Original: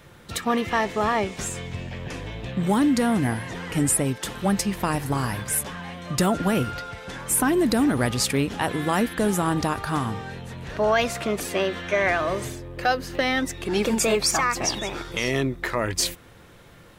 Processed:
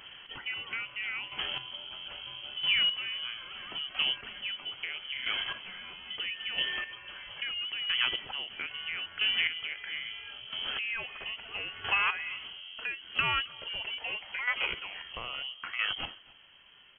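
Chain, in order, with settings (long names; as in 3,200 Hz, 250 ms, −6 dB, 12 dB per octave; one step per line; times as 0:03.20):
dynamic equaliser 1,000 Hz, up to +6 dB, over −39 dBFS, Q 1.7
voice inversion scrambler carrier 3,200 Hz
downward compressor 2 to 1, threshold −30 dBFS, peak gain reduction 9 dB
square-wave tremolo 0.76 Hz, depth 65%, duty 20%
single-tap delay 267 ms −23.5 dB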